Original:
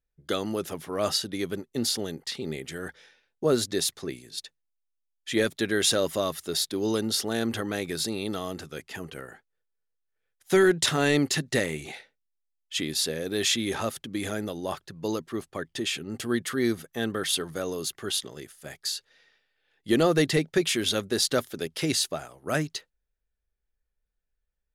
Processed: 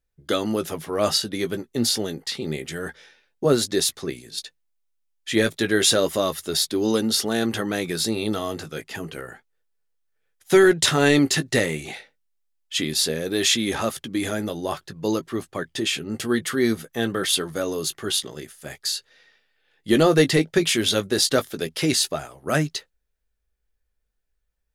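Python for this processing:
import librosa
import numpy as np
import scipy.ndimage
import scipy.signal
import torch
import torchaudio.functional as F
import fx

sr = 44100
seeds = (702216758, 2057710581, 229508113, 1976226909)

y = fx.chorus_voices(x, sr, voices=2, hz=0.29, base_ms=16, depth_ms=3.1, mix_pct=25)
y = F.gain(torch.from_numpy(y), 7.0).numpy()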